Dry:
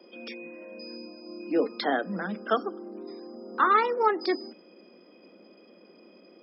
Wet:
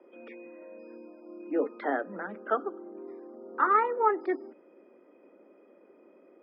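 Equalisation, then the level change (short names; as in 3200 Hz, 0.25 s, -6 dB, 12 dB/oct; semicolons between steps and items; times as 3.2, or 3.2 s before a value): speaker cabinet 260–2300 Hz, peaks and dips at 280 Hz +6 dB, 400 Hz +6 dB, 580 Hz +5 dB, 900 Hz +6 dB, 1300 Hz +5 dB, 1900 Hz +4 dB; notch 1100 Hz, Q 24; -7.0 dB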